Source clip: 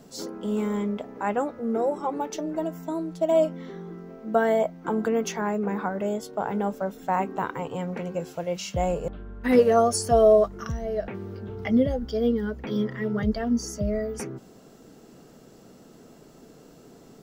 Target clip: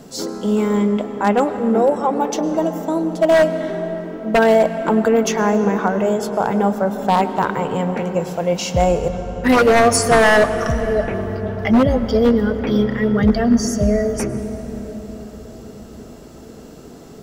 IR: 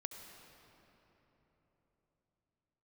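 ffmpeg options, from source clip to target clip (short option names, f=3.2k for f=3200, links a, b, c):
-filter_complex "[0:a]aeval=exprs='0.15*(abs(mod(val(0)/0.15+3,4)-2)-1)':c=same,asplit=2[a][b];[1:a]atrim=start_sample=2205,asetrate=28224,aresample=44100[c];[b][c]afir=irnorm=-1:irlink=0,volume=0dB[d];[a][d]amix=inputs=2:normalize=0,volume=4.5dB"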